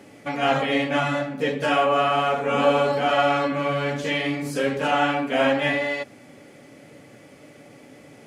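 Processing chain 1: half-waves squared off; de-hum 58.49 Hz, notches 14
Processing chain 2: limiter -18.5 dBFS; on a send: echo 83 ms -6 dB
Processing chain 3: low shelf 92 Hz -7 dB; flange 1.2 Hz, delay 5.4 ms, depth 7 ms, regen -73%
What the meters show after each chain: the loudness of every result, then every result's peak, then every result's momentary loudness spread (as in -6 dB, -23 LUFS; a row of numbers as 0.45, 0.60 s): -18.0, -26.0, -27.0 LUFS; -6.0, -15.0, -11.5 dBFS; 6, 5, 6 LU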